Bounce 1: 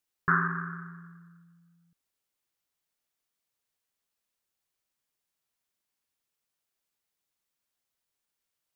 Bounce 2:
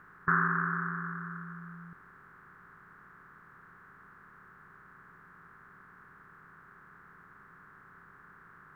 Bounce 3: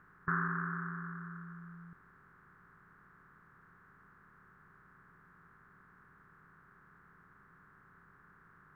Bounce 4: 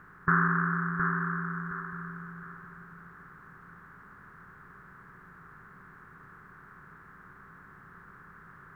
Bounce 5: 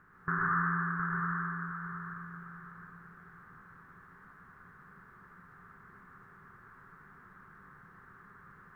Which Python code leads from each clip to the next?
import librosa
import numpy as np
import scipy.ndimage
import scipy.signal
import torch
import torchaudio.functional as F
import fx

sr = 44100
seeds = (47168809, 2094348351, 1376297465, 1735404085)

y1 = fx.bin_compress(x, sr, power=0.4)
y1 = y1 * 10.0 ** (-4.0 / 20.0)
y2 = fx.low_shelf(y1, sr, hz=260.0, db=6.0)
y2 = y2 * 10.0 ** (-7.5 / 20.0)
y3 = fx.echo_feedback(y2, sr, ms=716, feedback_pct=32, wet_db=-5.5)
y3 = y3 * 10.0 ** (9.0 / 20.0)
y4 = fx.rev_plate(y3, sr, seeds[0], rt60_s=1.3, hf_ratio=0.85, predelay_ms=95, drr_db=-3.0)
y4 = y4 * 10.0 ** (-8.5 / 20.0)